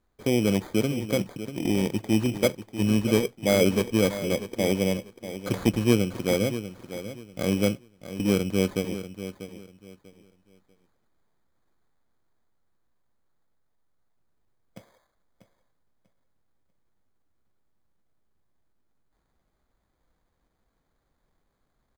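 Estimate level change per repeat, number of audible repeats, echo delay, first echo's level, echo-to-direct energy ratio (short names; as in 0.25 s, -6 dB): -12.0 dB, 2, 0.642 s, -12.0 dB, -11.5 dB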